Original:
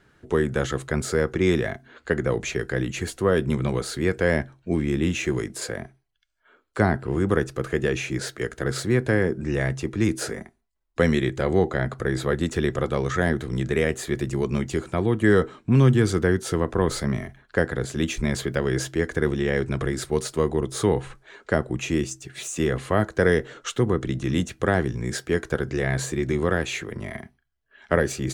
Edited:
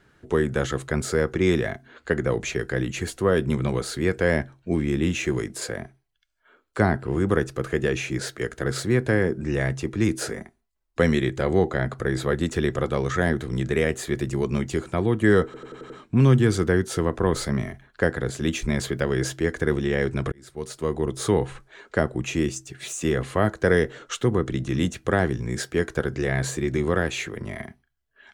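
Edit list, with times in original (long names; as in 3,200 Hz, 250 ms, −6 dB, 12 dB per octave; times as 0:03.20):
0:15.45: stutter 0.09 s, 6 plays
0:19.87–0:20.69: fade in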